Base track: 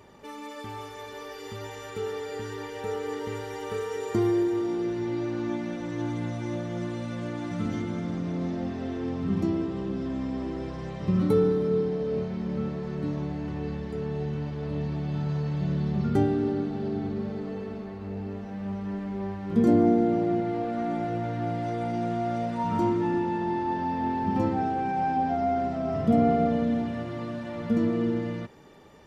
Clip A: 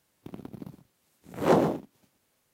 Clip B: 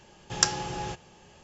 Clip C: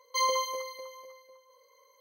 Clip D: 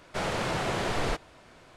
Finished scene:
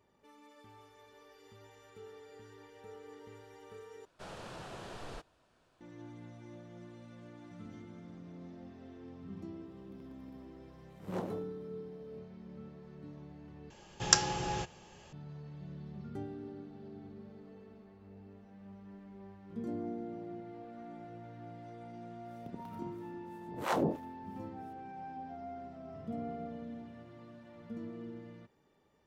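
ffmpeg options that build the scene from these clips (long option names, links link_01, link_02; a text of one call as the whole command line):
ffmpeg -i bed.wav -i cue0.wav -i cue1.wav -i cue2.wav -i cue3.wav -filter_complex "[1:a]asplit=2[link_01][link_02];[0:a]volume=-19dB[link_03];[4:a]equalizer=frequency=2100:width=5.8:gain=-8[link_04];[link_02]acrossover=split=710[link_05][link_06];[link_05]aeval=exprs='val(0)*(1-1/2+1/2*cos(2*PI*3*n/s))':channel_layout=same[link_07];[link_06]aeval=exprs='val(0)*(1-1/2-1/2*cos(2*PI*3*n/s))':channel_layout=same[link_08];[link_07][link_08]amix=inputs=2:normalize=0[link_09];[link_03]asplit=3[link_10][link_11][link_12];[link_10]atrim=end=4.054[link_13];[link_04]atrim=end=1.76,asetpts=PTS-STARTPTS,volume=-16.5dB[link_14];[link_11]atrim=start=5.806:end=13.704[link_15];[2:a]atrim=end=1.43,asetpts=PTS-STARTPTS,volume=-1.5dB[link_16];[link_12]atrim=start=15.126[link_17];[link_01]atrim=end=2.53,asetpts=PTS-STARTPTS,volume=-18dB,afade=type=in:duration=0.004:curve=hsin,afade=type=out:start_time=2.526:duration=0.004:curve=hsin,adelay=9660[link_18];[link_09]atrim=end=2.53,asetpts=PTS-STARTPTS,volume=-3dB,afade=type=in:duration=0.004:curve=hsin,afade=type=out:start_time=2.526:duration=0.004:curve=hsin,adelay=22200[link_19];[link_13][link_14]acrossfade=duration=0.004:curve1=hsin:curve2=hsin[link_20];[link_20][link_15]acrossfade=duration=0.004:curve1=hsin:curve2=hsin[link_21];[link_21][link_16]acrossfade=duration=0.004:curve1=hsin:curve2=hsin[link_22];[link_22][link_17]acrossfade=duration=0.004:curve1=hsin:curve2=hsin[link_23];[link_23][link_18][link_19]amix=inputs=3:normalize=0" out.wav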